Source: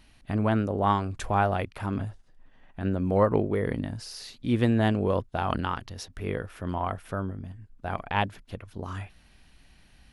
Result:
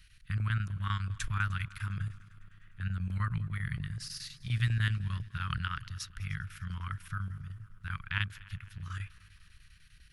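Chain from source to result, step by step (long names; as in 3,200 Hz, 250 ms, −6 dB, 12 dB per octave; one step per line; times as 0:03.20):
elliptic band-stop filter 150–1,400 Hz, stop band 40 dB
square-wave tremolo 10 Hz, depth 65%, duty 80%
echo machine with several playback heads 101 ms, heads second and third, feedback 59%, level −23 dB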